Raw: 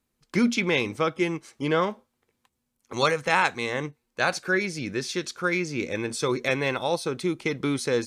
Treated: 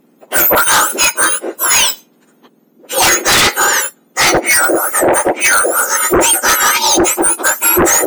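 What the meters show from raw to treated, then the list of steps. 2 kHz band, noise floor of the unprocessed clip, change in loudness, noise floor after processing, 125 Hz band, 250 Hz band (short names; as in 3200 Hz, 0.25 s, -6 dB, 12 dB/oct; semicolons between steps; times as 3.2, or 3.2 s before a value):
+14.5 dB, -78 dBFS, +16.0 dB, -52 dBFS, +2.5 dB, +7.5 dB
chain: spectrum mirrored in octaves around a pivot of 1800 Hz; dynamic EQ 330 Hz, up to +7 dB, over -52 dBFS, Q 5.9; sine folder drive 13 dB, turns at -12 dBFS; gain +6 dB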